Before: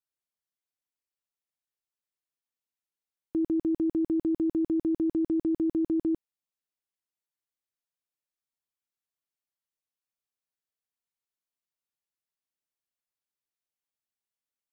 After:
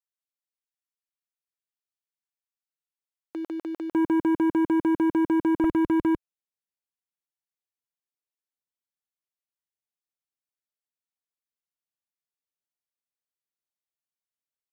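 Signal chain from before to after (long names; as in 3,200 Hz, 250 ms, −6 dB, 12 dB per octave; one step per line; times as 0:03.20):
high-pass filter 860 Hz 12 dB per octave, from 0:03.92 170 Hz, from 0:05.64 53 Hz
leveller curve on the samples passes 3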